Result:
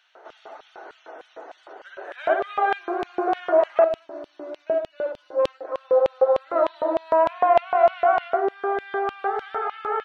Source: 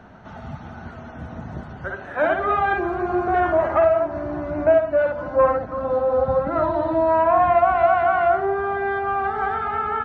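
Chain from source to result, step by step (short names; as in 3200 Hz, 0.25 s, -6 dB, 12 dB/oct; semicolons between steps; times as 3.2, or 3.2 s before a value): elliptic high-pass 310 Hz, stop band 40 dB; LFO high-pass square 3.3 Hz 450–3100 Hz; 3.84–5.65 band shelf 1100 Hz -9 dB 2.6 oct; gain -2.5 dB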